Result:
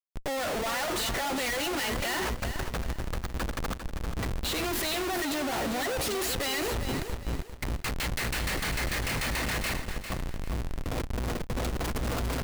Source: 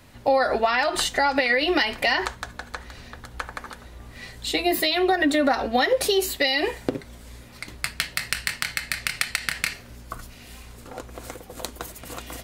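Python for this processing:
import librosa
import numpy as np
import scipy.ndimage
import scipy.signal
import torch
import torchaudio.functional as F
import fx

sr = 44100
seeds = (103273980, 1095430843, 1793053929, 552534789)

p1 = fx.schmitt(x, sr, flips_db=-35.5)
p2 = p1 + fx.echo_feedback(p1, sr, ms=399, feedback_pct=29, wet_db=-9, dry=0)
y = p2 * librosa.db_to_amplitude(-4.5)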